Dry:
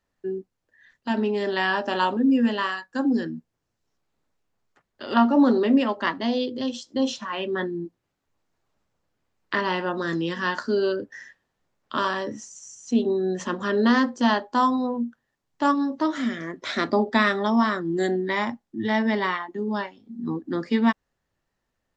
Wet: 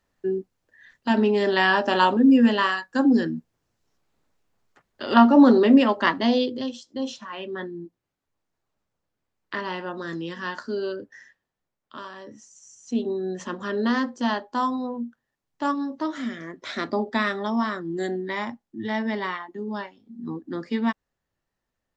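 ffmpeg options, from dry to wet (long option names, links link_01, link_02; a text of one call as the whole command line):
ffmpeg -i in.wav -af "volume=15dB,afade=type=out:start_time=6.34:duration=0.42:silence=0.334965,afade=type=out:start_time=11.12:duration=0.98:silence=0.334965,afade=type=in:start_time=12.1:duration=0.85:silence=0.281838" out.wav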